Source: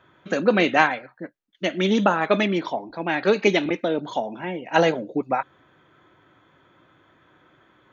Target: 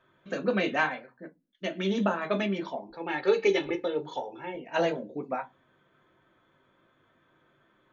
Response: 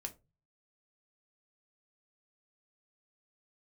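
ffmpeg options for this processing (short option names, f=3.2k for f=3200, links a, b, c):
-filter_complex "[0:a]asettb=1/sr,asplit=3[a][b][c];[a]atrim=end=2.904[d];[b]atrim=start=2.9:end=4.55,asetpts=PTS-STARTPTS,afade=t=in:d=0.004:c=qsin,afade=t=out:st=1.646:d=0.004:c=qsin,aecho=1:1:2.3:0.78,atrim=end_sample=72765[e];[c]atrim=start=4.546[f];[d][e]acrossfade=d=0.004:c1=hsin:c2=qsin[g];[g][f]acrossfade=d=0.004:c1=qsin:c2=hsin[h];[1:a]atrim=start_sample=2205,asetrate=70560,aresample=44100[i];[h][i]afir=irnorm=-1:irlink=0,volume=-2dB"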